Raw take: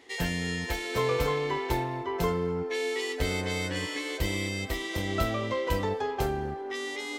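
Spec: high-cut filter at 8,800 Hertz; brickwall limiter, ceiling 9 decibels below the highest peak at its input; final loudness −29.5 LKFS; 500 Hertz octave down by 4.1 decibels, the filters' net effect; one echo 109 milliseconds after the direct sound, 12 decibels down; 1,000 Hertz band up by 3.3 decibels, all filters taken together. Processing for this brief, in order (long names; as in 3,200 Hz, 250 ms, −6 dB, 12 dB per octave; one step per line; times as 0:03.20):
low-pass filter 8,800 Hz
parametric band 500 Hz −6 dB
parametric band 1,000 Hz +5.5 dB
brickwall limiter −21.5 dBFS
single-tap delay 109 ms −12 dB
level +2 dB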